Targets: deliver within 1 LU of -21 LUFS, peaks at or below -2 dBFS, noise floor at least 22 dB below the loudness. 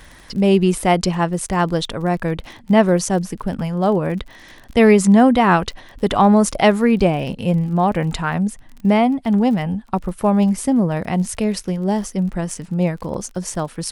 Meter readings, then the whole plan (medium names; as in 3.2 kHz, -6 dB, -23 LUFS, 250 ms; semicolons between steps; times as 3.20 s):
tick rate 34 per s; loudness -18.0 LUFS; peak level -1.5 dBFS; loudness target -21.0 LUFS
-> de-click; trim -3 dB